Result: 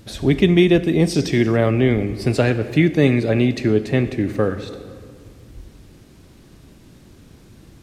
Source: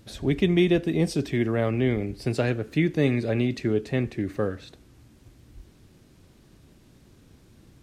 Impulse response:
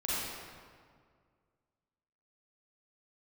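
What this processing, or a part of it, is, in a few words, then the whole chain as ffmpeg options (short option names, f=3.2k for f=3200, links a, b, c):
compressed reverb return: -filter_complex "[0:a]asplit=2[a][b];[1:a]atrim=start_sample=2205[c];[b][c]afir=irnorm=-1:irlink=0,acompressor=threshold=-18dB:ratio=6,volume=-14.5dB[d];[a][d]amix=inputs=2:normalize=0,asettb=1/sr,asplit=3[e][f][g];[e]atrim=end=1.144[h];[f]atrim=start=1.14:end=1.57,asetpts=PTS-STARTPTS,afade=t=in:d=0.004:c=qsin,afade=t=out:st=0.426:d=0.004:c=qsin,equalizer=f=5.6k:w=1.3:g=9.5[i];[g]atrim=start=1.566[j];[h][i]acrossfade=d=0.004:c1=hsin:c2=qsin[k];[k][j]acrossfade=d=0.004:c1=qsin:c2=hsin,volume=6.5dB"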